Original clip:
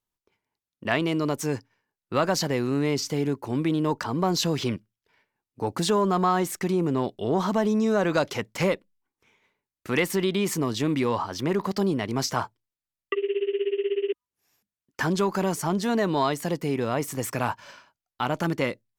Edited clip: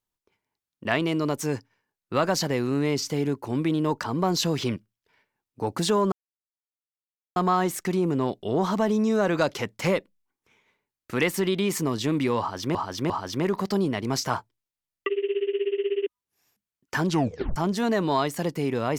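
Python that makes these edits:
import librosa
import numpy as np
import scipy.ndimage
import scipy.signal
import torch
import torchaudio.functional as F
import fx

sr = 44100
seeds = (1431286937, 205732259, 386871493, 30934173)

y = fx.edit(x, sr, fx.insert_silence(at_s=6.12, length_s=1.24),
    fx.repeat(start_s=11.16, length_s=0.35, count=3),
    fx.tape_stop(start_s=15.13, length_s=0.49), tone=tone)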